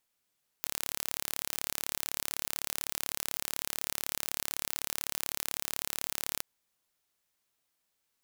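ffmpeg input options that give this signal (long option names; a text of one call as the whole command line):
ffmpeg -f lavfi -i "aevalsrc='0.501*eq(mod(n,1228),0)':duration=5.77:sample_rate=44100" out.wav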